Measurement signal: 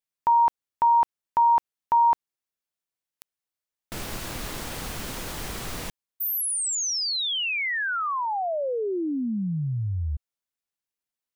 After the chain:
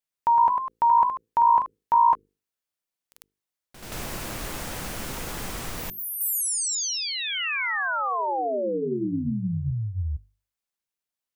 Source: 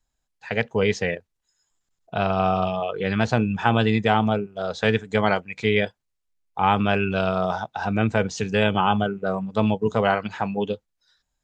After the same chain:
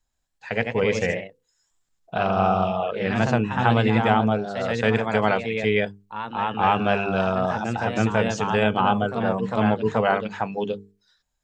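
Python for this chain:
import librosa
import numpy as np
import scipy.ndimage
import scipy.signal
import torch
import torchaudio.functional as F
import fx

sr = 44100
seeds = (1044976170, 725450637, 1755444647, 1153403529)

y = fx.hum_notches(x, sr, base_hz=50, count=9)
y = fx.echo_pitch(y, sr, ms=126, semitones=1, count=2, db_per_echo=-6.0)
y = fx.dynamic_eq(y, sr, hz=3900.0, q=1.5, threshold_db=-42.0, ratio=4.0, max_db=-5)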